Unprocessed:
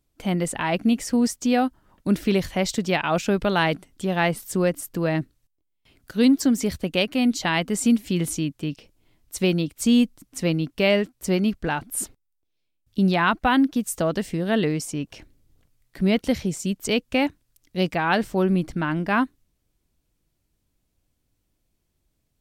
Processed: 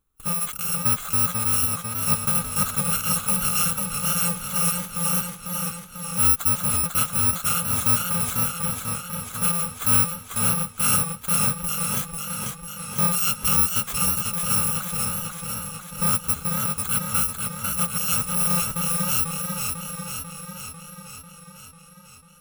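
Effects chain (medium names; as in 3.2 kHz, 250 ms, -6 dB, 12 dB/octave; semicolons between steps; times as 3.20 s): bit-reversed sample order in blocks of 128 samples; graphic EQ with 31 bands 630 Hz -7 dB, 1.25 kHz +11 dB, 2 kHz -6 dB, 5 kHz -12 dB; modulated delay 495 ms, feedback 66%, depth 57 cents, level -3.5 dB; trim -2 dB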